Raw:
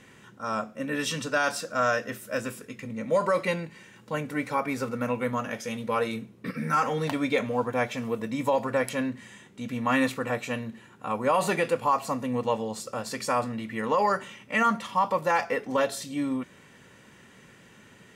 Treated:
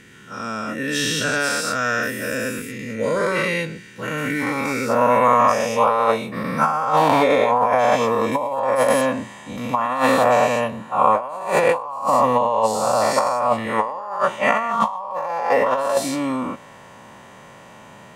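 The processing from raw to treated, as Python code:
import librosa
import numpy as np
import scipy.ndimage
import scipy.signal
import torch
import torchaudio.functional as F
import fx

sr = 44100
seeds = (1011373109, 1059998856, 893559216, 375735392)

y = fx.spec_dilate(x, sr, span_ms=240)
y = fx.band_shelf(y, sr, hz=810.0, db=fx.steps((0.0, -8.0), (4.88, 11.0)), octaves=1.3)
y = fx.over_compress(y, sr, threshold_db=-15.0, ratio=-0.5)
y = F.gain(torch.from_numpy(y), -2.0).numpy()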